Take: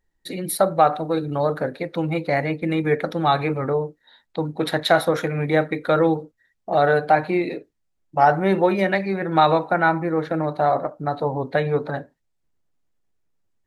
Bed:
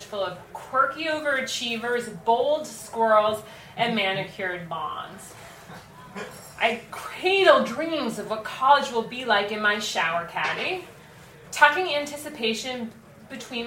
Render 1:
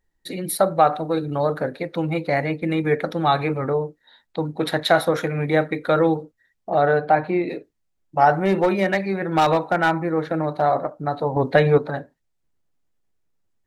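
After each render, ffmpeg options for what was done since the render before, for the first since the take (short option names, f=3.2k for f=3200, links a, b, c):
-filter_complex "[0:a]asettb=1/sr,asplit=3[a][b][c];[a]atrim=end=6.704[d];[b]atrim=start=6.7:end=7.49,asetpts=PTS-STARTPTS,afade=t=in:d=0.004:c=qsin,afade=t=out:st=0.786:d=0.004:c=qsin,lowpass=f=2.1k:p=1[e];[c]atrim=start=7.486[f];[d][e]acrossfade=d=0.004:c1=hsin:c2=qsin[g];[g][f]acrossfade=d=0.004:c1=qsin:c2=hsin,asettb=1/sr,asplit=3[h][i][j];[h]atrim=end=8.454[k];[i]atrim=start=8.45:end=10.62,asetpts=PTS-STARTPTS,afade=t=in:d=0.004:c=qsin,afade=t=out:st=2.166:d=0.004:c=qsin,asoftclip=type=hard:threshold=-12dB[l];[j]atrim=start=10.616[m];[k][l]acrossfade=d=0.004:c1=hsin:c2=qsin[n];[n][m]acrossfade=d=0.004:c1=qsin:c2=hsin,asettb=1/sr,asplit=3[o][p][q];[o]atrim=end=11.364[r];[p]atrim=start=11.36:end=11.78,asetpts=PTS-STARTPTS,afade=t=in:d=0.004:c=qsin,afade=t=out:st=0.416:d=0.004:c=qsin,acontrast=51[s];[q]atrim=start=11.776[t];[r][s]acrossfade=d=0.004:c1=hsin:c2=qsin[u];[u][t]acrossfade=d=0.004:c1=qsin:c2=hsin"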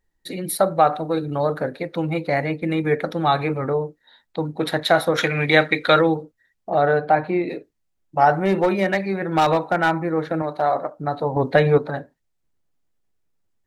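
-filter_complex "[0:a]asplit=3[a][b][c];[a]afade=t=out:st=5.17:d=0.02[d];[b]equalizer=f=3.4k:t=o:w=2.4:g=14.5,afade=t=in:st=5.17:d=0.02,afade=t=out:st=6:d=0.02[e];[c]afade=t=in:st=6:d=0.02[f];[d][e][f]amix=inputs=3:normalize=0,asettb=1/sr,asplit=3[g][h][i];[g]atrim=end=10.424[j];[h]atrim=start=10.42:end=10.98,asetpts=PTS-STARTPTS,afade=t=in:d=0.004:c=qsin,afade=t=out:st=0.556:d=0.004:c=qsin,lowshelf=f=190:g=-11[k];[i]atrim=start=10.976[l];[j][k]acrossfade=d=0.004:c1=hsin:c2=qsin[m];[m][l]acrossfade=d=0.004:c1=qsin:c2=hsin"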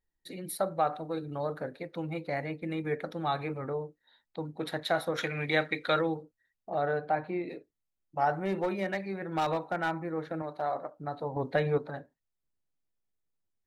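-af "volume=-12dB"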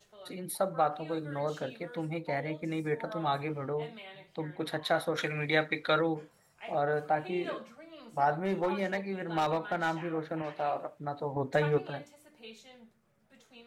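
-filter_complex "[1:a]volume=-23.5dB[a];[0:a][a]amix=inputs=2:normalize=0"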